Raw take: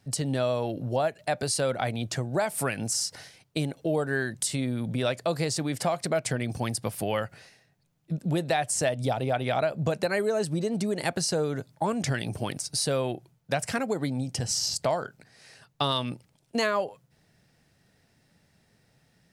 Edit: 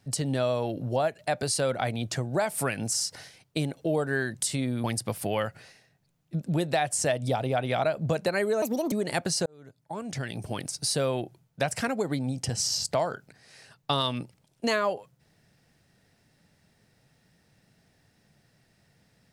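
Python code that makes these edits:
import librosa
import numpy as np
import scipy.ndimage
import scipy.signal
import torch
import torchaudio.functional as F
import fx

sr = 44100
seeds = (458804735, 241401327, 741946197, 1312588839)

y = fx.edit(x, sr, fx.cut(start_s=4.84, length_s=1.77),
    fx.speed_span(start_s=10.39, length_s=0.44, speed=1.47),
    fx.fade_in_span(start_s=11.37, length_s=1.37), tone=tone)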